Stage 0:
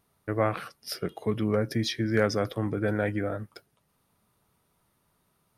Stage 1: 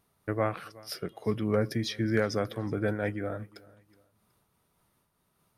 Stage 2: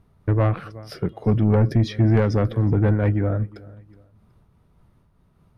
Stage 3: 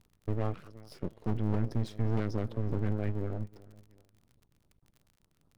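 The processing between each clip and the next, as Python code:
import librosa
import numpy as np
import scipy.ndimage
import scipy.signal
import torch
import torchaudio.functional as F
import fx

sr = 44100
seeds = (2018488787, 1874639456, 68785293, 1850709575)

y1 = fx.echo_feedback(x, sr, ms=370, feedback_pct=33, wet_db=-23.5)
y1 = fx.am_noise(y1, sr, seeds[0], hz=5.7, depth_pct=60)
y1 = y1 * 10.0 ** (1.0 / 20.0)
y2 = fx.riaa(y1, sr, side='playback')
y2 = 10.0 ** (-17.0 / 20.0) * np.tanh(y2 / 10.0 ** (-17.0 / 20.0))
y2 = y2 * 10.0 ** (6.0 / 20.0)
y3 = fx.filter_lfo_notch(y2, sr, shape='sine', hz=4.8, low_hz=720.0, high_hz=2200.0, q=0.81)
y3 = np.maximum(y3, 0.0)
y3 = fx.dmg_crackle(y3, sr, seeds[1], per_s=37.0, level_db=-39.0)
y3 = y3 * 10.0 ** (-8.5 / 20.0)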